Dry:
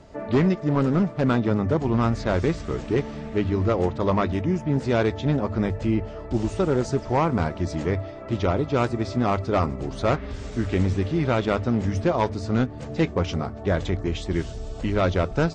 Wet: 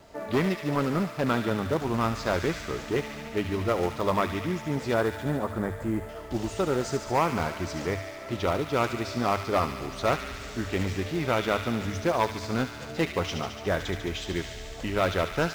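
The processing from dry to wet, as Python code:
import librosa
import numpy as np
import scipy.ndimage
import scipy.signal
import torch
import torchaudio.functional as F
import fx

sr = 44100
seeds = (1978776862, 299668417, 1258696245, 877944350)

p1 = fx.low_shelf(x, sr, hz=390.0, db=-9.0)
p2 = fx.quant_companded(p1, sr, bits=4)
p3 = p1 + (p2 * 10.0 ** (-9.0 / 20.0))
p4 = fx.vibrato(p3, sr, rate_hz=2.8, depth_cents=29.0)
p5 = fx.band_shelf(p4, sr, hz=3700.0, db=-12.5, octaves=1.7, at=(4.94, 6.09))
p6 = fx.echo_wet_highpass(p5, sr, ms=72, feedback_pct=80, hz=1800.0, wet_db=-6.0)
y = p6 * 10.0 ** (-2.5 / 20.0)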